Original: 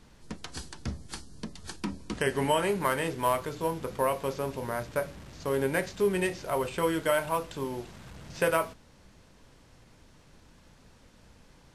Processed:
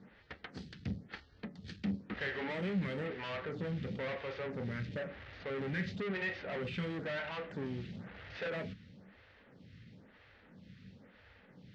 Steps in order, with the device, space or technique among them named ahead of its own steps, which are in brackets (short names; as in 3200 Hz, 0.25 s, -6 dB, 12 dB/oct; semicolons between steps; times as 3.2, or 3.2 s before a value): vibe pedal into a guitar amplifier (photocell phaser 1 Hz; tube stage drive 39 dB, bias 0.4; speaker cabinet 78–3900 Hz, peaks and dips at 100 Hz +6 dB, 190 Hz +8 dB, 340 Hz -5 dB, 680 Hz -4 dB, 1000 Hz -10 dB, 1900 Hz +6 dB); gain +4 dB